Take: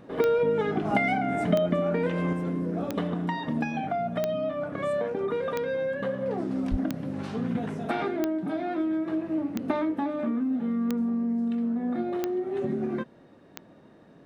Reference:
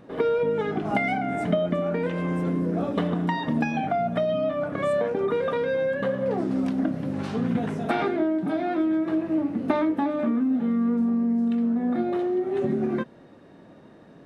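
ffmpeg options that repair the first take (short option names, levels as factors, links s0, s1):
-filter_complex "[0:a]adeclick=t=4,asplit=3[s0][s1][s2];[s0]afade=t=out:st=6.7:d=0.02[s3];[s1]highpass=f=140:w=0.5412,highpass=f=140:w=1.3066,afade=t=in:st=6.7:d=0.02,afade=t=out:st=6.82:d=0.02[s4];[s2]afade=t=in:st=6.82:d=0.02[s5];[s3][s4][s5]amix=inputs=3:normalize=0,asetnsamples=n=441:p=0,asendcmd='2.33 volume volume 4dB',volume=1"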